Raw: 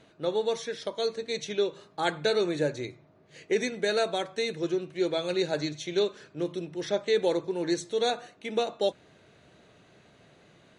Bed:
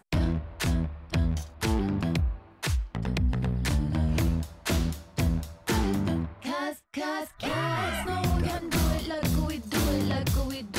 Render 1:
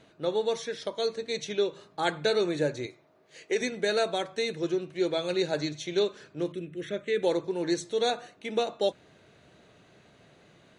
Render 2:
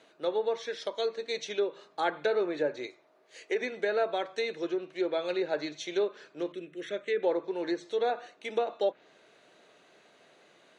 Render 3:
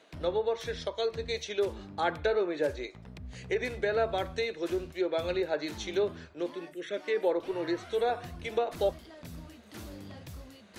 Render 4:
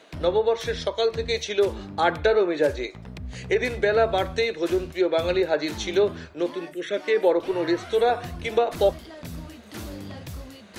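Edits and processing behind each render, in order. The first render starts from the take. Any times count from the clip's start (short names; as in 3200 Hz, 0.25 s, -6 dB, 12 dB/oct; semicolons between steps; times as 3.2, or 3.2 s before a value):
2.86–3.61 tone controls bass -13 dB, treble +3 dB; 6.52–7.23 fixed phaser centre 2100 Hz, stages 4
treble ducked by the level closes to 1700 Hz, closed at -22.5 dBFS; HPF 370 Hz 12 dB/oct
add bed -18.5 dB
gain +8 dB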